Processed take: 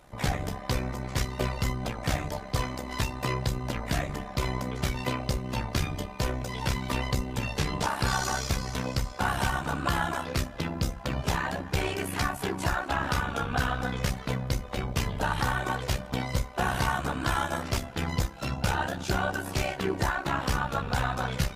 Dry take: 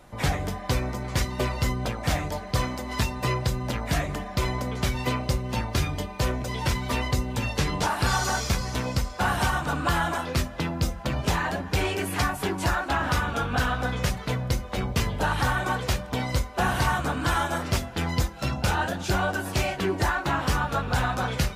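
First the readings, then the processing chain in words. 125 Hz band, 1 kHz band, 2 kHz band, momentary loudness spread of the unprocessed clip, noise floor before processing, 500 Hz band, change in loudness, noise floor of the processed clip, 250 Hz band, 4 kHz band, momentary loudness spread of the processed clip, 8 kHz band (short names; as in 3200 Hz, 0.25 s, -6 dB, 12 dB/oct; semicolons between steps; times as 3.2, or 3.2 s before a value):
-3.5 dB, -3.0 dB, -3.5 dB, 4 LU, -38 dBFS, -3.0 dB, -3.0 dB, -41 dBFS, -3.0 dB, -3.0 dB, 4 LU, -3.0 dB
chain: AM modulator 66 Hz, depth 55%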